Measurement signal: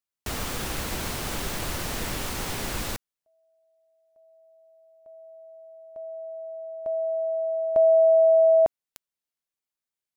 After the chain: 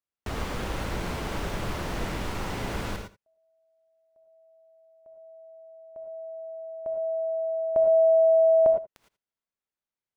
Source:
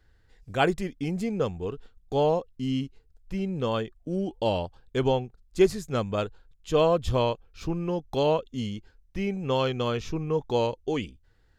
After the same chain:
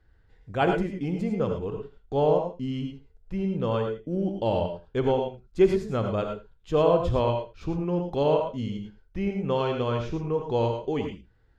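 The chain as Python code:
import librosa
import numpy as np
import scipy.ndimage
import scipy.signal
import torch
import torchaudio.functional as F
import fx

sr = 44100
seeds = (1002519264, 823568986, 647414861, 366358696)

y = fx.lowpass(x, sr, hz=1800.0, slope=6)
y = y + 10.0 ** (-17.0 / 20.0) * np.pad(y, (int(81 * sr / 1000.0), 0))[:len(y)]
y = fx.rev_gated(y, sr, seeds[0], gate_ms=130, shape='rising', drr_db=4.0)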